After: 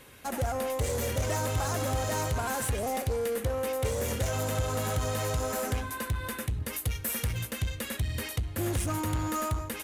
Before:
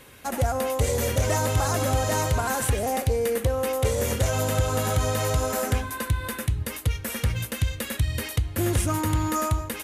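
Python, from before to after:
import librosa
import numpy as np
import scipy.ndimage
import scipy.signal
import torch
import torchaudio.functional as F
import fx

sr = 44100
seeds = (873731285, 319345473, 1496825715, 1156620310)

p1 = fx.high_shelf(x, sr, hz=8600.0, db=11.0, at=(6.73, 7.39))
p2 = 10.0 ** (-26.5 / 20.0) * (np.abs((p1 / 10.0 ** (-26.5 / 20.0) + 3.0) % 4.0 - 2.0) - 1.0)
p3 = p1 + (p2 * librosa.db_to_amplitude(-7.0))
y = p3 * librosa.db_to_amplitude(-6.5)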